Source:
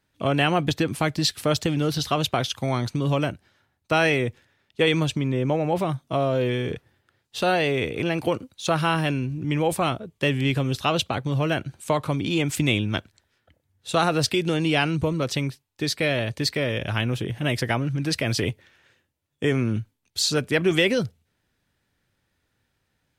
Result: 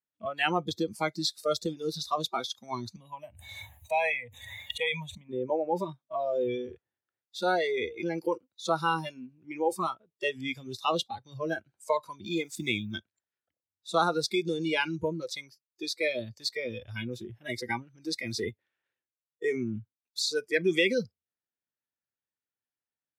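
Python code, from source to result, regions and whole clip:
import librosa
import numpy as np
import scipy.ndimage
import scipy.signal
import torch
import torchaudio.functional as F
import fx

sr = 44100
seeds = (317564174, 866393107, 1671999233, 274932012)

y = fx.chain(x, sr, fx.highpass(hz=45.0, slope=12),
    fx.fixed_phaser(hz=1400.0, stages=6),
    fx.pre_swell(db_per_s=22.0), at=(2.96, 5.29))
y = fx.chain(y, sr, fx.law_mismatch(coded='A'),
    fx.peak_eq(hz=5200.0, db=-2.5, octaves=0.31), at=(12.23, 12.98))
y = fx.highpass(y, sr, hz=370.0, slope=6)
y = fx.noise_reduce_blind(y, sr, reduce_db=23)
y = fx.high_shelf(y, sr, hz=4700.0, db=-11.0)
y = y * 10.0 ** (-1.0 / 20.0)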